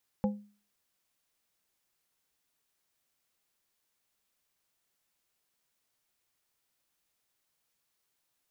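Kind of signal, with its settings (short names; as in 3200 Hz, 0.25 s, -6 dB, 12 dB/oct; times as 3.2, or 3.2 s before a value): glass hit plate, lowest mode 206 Hz, modes 3, decay 0.40 s, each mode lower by 5 dB, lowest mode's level -23 dB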